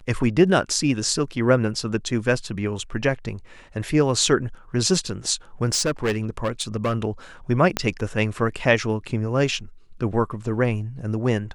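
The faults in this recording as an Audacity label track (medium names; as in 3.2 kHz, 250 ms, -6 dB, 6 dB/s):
5.700000	6.960000	clipped -18 dBFS
7.770000	7.770000	pop -6 dBFS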